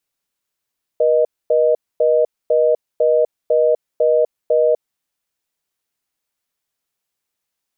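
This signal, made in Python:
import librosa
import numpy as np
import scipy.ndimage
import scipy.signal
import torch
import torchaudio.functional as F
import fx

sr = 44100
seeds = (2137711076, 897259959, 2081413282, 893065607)

y = fx.call_progress(sr, length_s=3.98, kind='reorder tone', level_db=-14.0)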